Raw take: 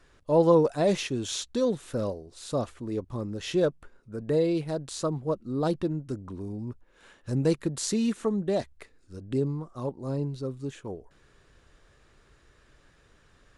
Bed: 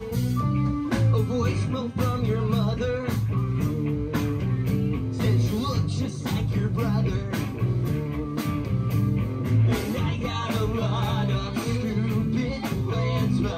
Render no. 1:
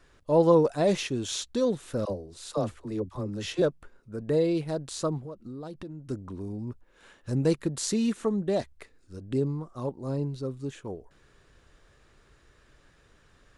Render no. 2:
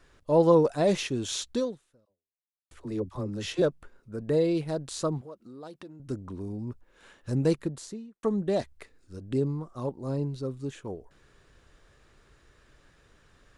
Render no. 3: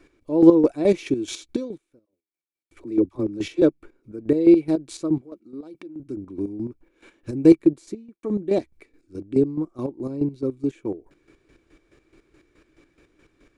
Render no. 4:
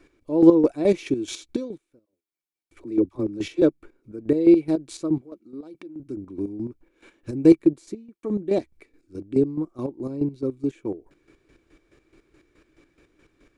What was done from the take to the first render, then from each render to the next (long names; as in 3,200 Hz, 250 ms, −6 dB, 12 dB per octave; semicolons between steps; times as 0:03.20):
0:02.05–0:03.62: all-pass dispersion lows, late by 52 ms, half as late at 490 Hz; 0:05.21–0:06.10: downward compressor, threshold −37 dBFS
0:01.59–0:02.71: fade out exponential; 0:05.21–0:06.00: high-pass filter 440 Hz 6 dB per octave; 0:07.42–0:08.23: fade out and dull
hollow resonant body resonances 320/2,300 Hz, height 18 dB, ringing for 40 ms; square-wave tremolo 4.7 Hz, depth 65%, duty 35%
level −1 dB